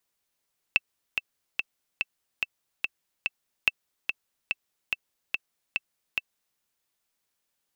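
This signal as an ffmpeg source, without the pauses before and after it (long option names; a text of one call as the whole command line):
ffmpeg -f lavfi -i "aevalsrc='pow(10,(-6.5-6.5*gte(mod(t,7*60/144),60/144))/20)*sin(2*PI*2660*mod(t,60/144))*exp(-6.91*mod(t,60/144)/0.03)':duration=5.83:sample_rate=44100" out.wav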